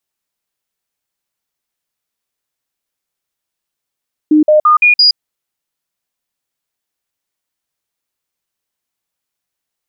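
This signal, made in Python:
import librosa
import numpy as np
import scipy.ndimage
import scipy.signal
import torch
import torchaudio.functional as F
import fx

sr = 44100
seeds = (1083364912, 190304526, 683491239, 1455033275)

y = fx.stepped_sweep(sr, from_hz=305.0, direction='up', per_octave=1, tones=5, dwell_s=0.12, gap_s=0.05, level_db=-4.5)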